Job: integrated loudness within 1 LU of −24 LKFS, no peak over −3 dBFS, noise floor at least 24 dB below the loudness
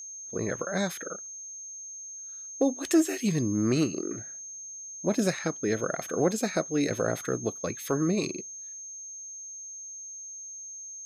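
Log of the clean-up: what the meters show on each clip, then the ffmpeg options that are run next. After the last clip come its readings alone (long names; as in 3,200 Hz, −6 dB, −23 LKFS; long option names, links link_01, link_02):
interfering tone 6,400 Hz; level of the tone −39 dBFS; integrated loudness −30.5 LKFS; sample peak −12.0 dBFS; target loudness −24.0 LKFS
→ -af "bandreject=frequency=6400:width=30"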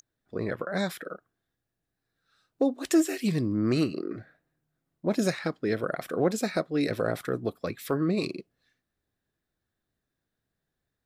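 interfering tone none found; integrated loudness −29.0 LKFS; sample peak −12.5 dBFS; target loudness −24.0 LKFS
→ -af "volume=5dB"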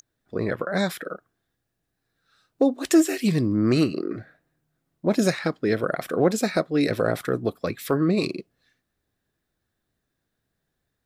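integrated loudness −24.0 LKFS; sample peak −7.5 dBFS; background noise floor −79 dBFS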